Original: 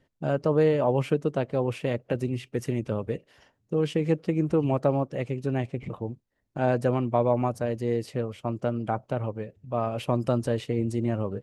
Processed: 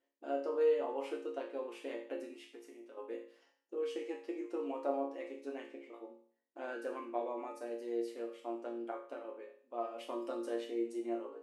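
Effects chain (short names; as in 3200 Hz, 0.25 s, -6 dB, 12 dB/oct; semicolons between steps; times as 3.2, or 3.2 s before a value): 2.48–2.97 compressor 12:1, threshold -34 dBFS, peak gain reduction 12 dB; brick-wall FIR high-pass 250 Hz; resonator bank A#2 minor, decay 0.5 s; gain +5 dB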